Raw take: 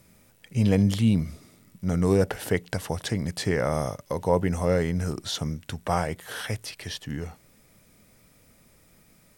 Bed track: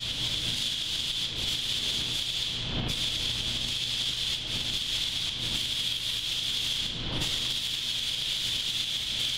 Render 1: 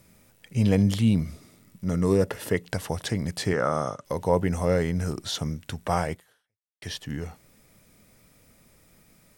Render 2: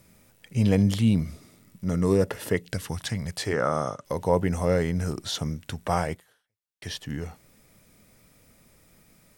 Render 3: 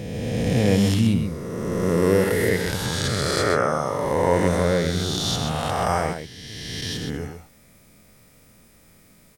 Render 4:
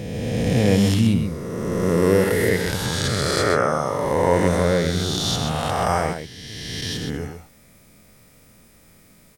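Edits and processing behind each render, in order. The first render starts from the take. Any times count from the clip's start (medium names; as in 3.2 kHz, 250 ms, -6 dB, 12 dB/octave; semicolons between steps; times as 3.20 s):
1.84–2.65 s: comb of notches 760 Hz; 3.53–4.05 s: cabinet simulation 150–8300 Hz, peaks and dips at 1.3 kHz +9 dB, 2.2 kHz -7 dB, 4.7 kHz -7 dB; 6.13–6.82 s: fade out exponential
2.60–3.52 s: peaking EQ 1.2 kHz -> 160 Hz -14.5 dB
reverse spectral sustain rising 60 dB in 2.46 s; on a send: delay 129 ms -7 dB
trim +1.5 dB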